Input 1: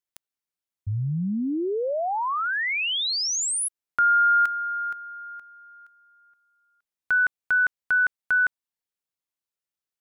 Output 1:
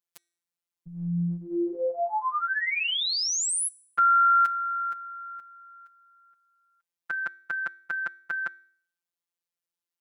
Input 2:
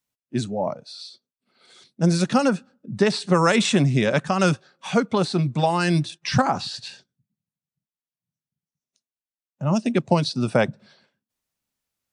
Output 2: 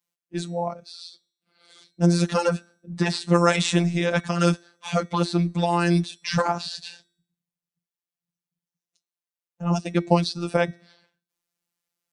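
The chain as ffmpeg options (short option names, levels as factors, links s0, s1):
-af "highpass=f=110:p=1,bandreject=f=378:t=h:w=4,bandreject=f=756:t=h:w=4,bandreject=f=1134:t=h:w=4,bandreject=f=1512:t=h:w=4,bandreject=f=1890:t=h:w=4,bandreject=f=2268:t=h:w=4,bandreject=f=2646:t=h:w=4,bandreject=f=3024:t=h:w=4,bandreject=f=3402:t=h:w=4,bandreject=f=3780:t=h:w=4,bandreject=f=4158:t=h:w=4,bandreject=f=4536:t=h:w=4,bandreject=f=4914:t=h:w=4,bandreject=f=5292:t=h:w=4,bandreject=f=5670:t=h:w=4,bandreject=f=6048:t=h:w=4,bandreject=f=6426:t=h:w=4,bandreject=f=6804:t=h:w=4,bandreject=f=7182:t=h:w=4,bandreject=f=7560:t=h:w=4,bandreject=f=7938:t=h:w=4,bandreject=f=8316:t=h:w=4,bandreject=f=8694:t=h:w=4,bandreject=f=9072:t=h:w=4,bandreject=f=9450:t=h:w=4,bandreject=f=9828:t=h:w=4,bandreject=f=10206:t=h:w=4,bandreject=f=10584:t=h:w=4,afftfilt=real='hypot(re,im)*cos(PI*b)':imag='0':win_size=1024:overlap=0.75,volume=1.26"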